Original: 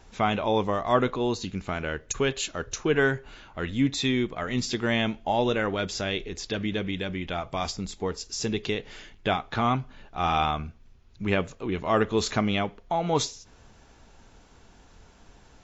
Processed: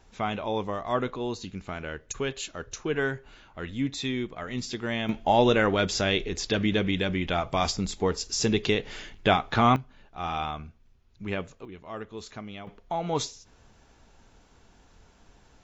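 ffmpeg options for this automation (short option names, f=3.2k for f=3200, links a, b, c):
-af "asetnsamples=n=441:p=0,asendcmd='5.09 volume volume 4dB;9.76 volume volume -6.5dB;11.65 volume volume -15dB;12.67 volume volume -3.5dB',volume=-5dB"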